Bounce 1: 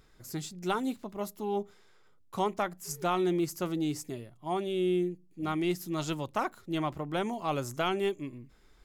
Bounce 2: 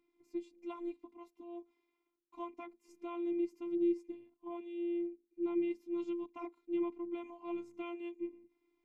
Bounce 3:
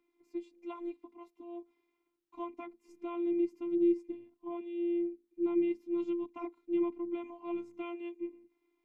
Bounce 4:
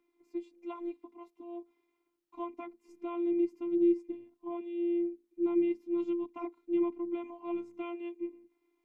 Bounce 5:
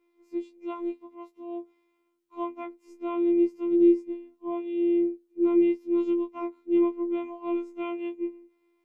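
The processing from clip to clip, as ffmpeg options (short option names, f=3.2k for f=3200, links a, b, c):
-filter_complex "[0:a]asplit=3[a][b][c];[a]bandpass=f=300:t=q:w=8,volume=0dB[d];[b]bandpass=f=870:t=q:w=8,volume=-6dB[e];[c]bandpass=f=2.24k:t=q:w=8,volume=-9dB[f];[d][e][f]amix=inputs=3:normalize=0,afftfilt=real='hypot(re,im)*cos(PI*b)':imag='0':win_size=512:overlap=0.75,volume=3.5dB"
-filter_complex "[0:a]bass=f=250:g=-6,treble=f=4k:g=-5,acrossover=split=270[a][b];[a]dynaudnorm=f=360:g=9:m=9dB[c];[c][b]amix=inputs=2:normalize=0,volume=2dB"
-af "equalizer=f=590:t=o:w=2.9:g=3,volume=-1dB"
-af "afftfilt=real='re*2*eq(mod(b,4),0)':imag='im*2*eq(mod(b,4),0)':win_size=2048:overlap=0.75,volume=3dB"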